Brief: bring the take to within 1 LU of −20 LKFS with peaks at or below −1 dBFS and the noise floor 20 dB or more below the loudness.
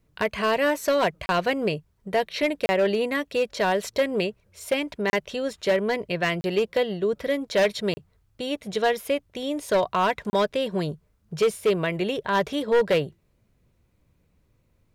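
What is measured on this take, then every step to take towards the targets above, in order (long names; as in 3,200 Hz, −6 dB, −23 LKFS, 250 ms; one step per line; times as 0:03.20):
share of clipped samples 1.4%; peaks flattened at −15.5 dBFS; number of dropouts 6; longest dropout 30 ms; integrated loudness −25.0 LKFS; sample peak −15.5 dBFS; target loudness −20.0 LKFS
→ clipped peaks rebuilt −15.5 dBFS
repair the gap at 0:01.26/0:02.66/0:05.10/0:06.41/0:07.94/0:10.30, 30 ms
level +5 dB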